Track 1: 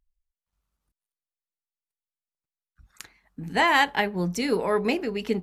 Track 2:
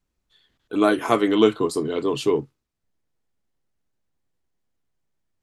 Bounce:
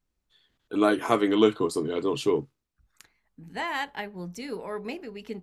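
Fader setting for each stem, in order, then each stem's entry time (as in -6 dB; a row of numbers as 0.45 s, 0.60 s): -10.5 dB, -3.5 dB; 0.00 s, 0.00 s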